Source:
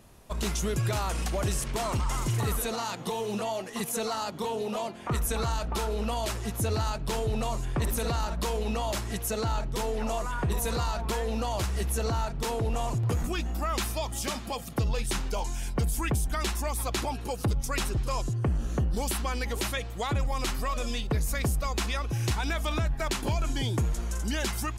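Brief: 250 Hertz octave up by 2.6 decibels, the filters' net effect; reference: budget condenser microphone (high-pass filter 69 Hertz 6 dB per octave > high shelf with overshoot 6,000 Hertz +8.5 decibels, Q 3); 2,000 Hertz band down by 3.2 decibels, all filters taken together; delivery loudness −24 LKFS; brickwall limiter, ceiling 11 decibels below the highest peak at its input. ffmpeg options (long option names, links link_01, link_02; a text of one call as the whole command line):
ffmpeg -i in.wav -af "equalizer=frequency=250:width_type=o:gain=4,equalizer=frequency=2000:width_type=o:gain=-3,alimiter=level_in=4dB:limit=-24dB:level=0:latency=1,volume=-4dB,highpass=frequency=69:poles=1,highshelf=frequency=6000:width_type=q:width=3:gain=8.5,volume=9.5dB" out.wav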